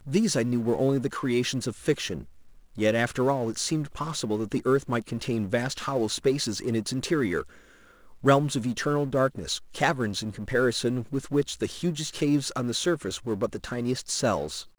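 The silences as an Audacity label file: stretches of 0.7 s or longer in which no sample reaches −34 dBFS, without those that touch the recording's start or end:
7.420000	8.240000	silence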